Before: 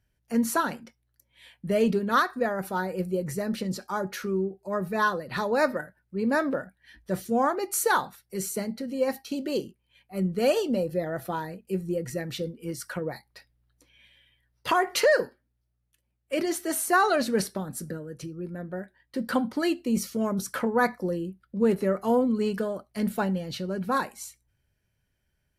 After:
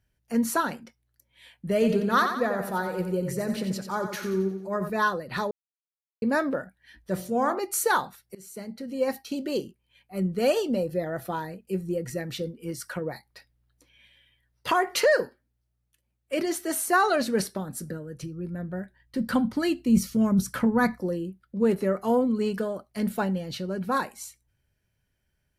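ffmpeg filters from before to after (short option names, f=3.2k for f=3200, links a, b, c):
-filter_complex "[0:a]asettb=1/sr,asplit=3[a][b][c];[a]atrim=end=1.734[d];[b]atrim=start=1.73:end=4.9,asetpts=PTS-STARTPTS,afade=t=in:d=0.004:c=qsin,afade=t=out:st=3.166:d=0.004:c=qsin,aecho=1:1:89|178|267|356|445:0.422|0.198|0.0932|0.0438|0.0206,atrim=end_sample=139797[e];[c]atrim=start=4.896[f];[d][e]acrossfade=d=0.004:c1=hsin:c2=qsin[g];[g][f]acrossfade=d=0.004:c1=qsin:c2=hsin,asplit=3[h][i][j];[h]afade=t=out:st=7.16:d=0.02[k];[i]bandreject=f=45.27:t=h:w=4,bandreject=f=90.54:t=h:w=4,bandreject=f=135.81:t=h:w=4,bandreject=f=181.08:t=h:w=4,bandreject=f=226.35:t=h:w=4,bandreject=f=271.62:t=h:w=4,bandreject=f=316.89:t=h:w=4,bandreject=f=362.16:t=h:w=4,bandreject=f=407.43:t=h:w=4,bandreject=f=452.7:t=h:w=4,bandreject=f=497.97:t=h:w=4,bandreject=f=543.24:t=h:w=4,bandreject=f=588.51:t=h:w=4,bandreject=f=633.78:t=h:w=4,bandreject=f=679.05:t=h:w=4,bandreject=f=724.32:t=h:w=4,bandreject=f=769.59:t=h:w=4,bandreject=f=814.86:t=h:w=4,bandreject=f=860.13:t=h:w=4,bandreject=f=905.4:t=h:w=4,bandreject=f=950.67:t=h:w=4,bandreject=f=995.94:t=h:w=4,bandreject=f=1.04121k:t=h:w=4,bandreject=f=1.08648k:t=h:w=4,bandreject=f=1.13175k:t=h:w=4,bandreject=f=1.17702k:t=h:w=4,bandreject=f=1.22229k:t=h:w=4,bandreject=f=1.26756k:t=h:w=4,bandreject=f=1.31283k:t=h:w=4,bandreject=f=1.3581k:t=h:w=4,afade=t=in:st=7.16:d=0.02,afade=t=out:st=7.59:d=0.02[l];[j]afade=t=in:st=7.59:d=0.02[m];[k][l][m]amix=inputs=3:normalize=0,asettb=1/sr,asplit=3[n][o][p];[n]atrim=end=17.774[q];[o]atrim=start=17.77:end=21.01,asetpts=PTS-STARTPTS,afade=t=in:d=0.004:c=qsin,afade=t=out:st=3.236:d=0.004:c=qsin,asubboost=boost=6.5:cutoff=210[r];[p]atrim=start=21.006[s];[q][r]acrossfade=d=0.004:c1=hsin:c2=qsin[t];[t][s]acrossfade=d=0.004:c1=qsin:c2=hsin,asplit=4[u][v][w][x];[u]atrim=end=5.51,asetpts=PTS-STARTPTS,afade=t=out:st=5.506:d=0.004:c=hsin[y];[v]atrim=start=5.51:end=6.22,asetpts=PTS-STARTPTS,volume=0[z];[w]atrim=start=6.22:end=8.35,asetpts=PTS-STARTPTS,afade=t=in:d=0.004:c=hsin,afade=t=out:st=2.126:d=0.004:c=hsin:silence=0.0668344[aa];[x]atrim=start=8.35,asetpts=PTS-STARTPTS,afade=t=in:d=0.69:silence=0.0668344[ab];[y][z][aa][ab]concat=n=4:v=0:a=1"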